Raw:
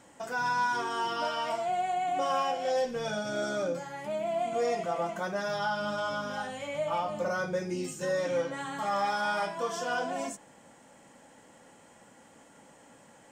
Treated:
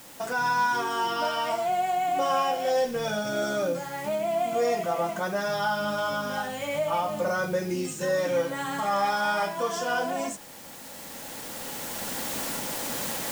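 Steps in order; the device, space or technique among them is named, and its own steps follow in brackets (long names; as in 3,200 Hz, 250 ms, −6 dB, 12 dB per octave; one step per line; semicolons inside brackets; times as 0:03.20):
cheap recorder with automatic gain (white noise bed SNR 21 dB; camcorder AGC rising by 7.8 dB per second)
level +4 dB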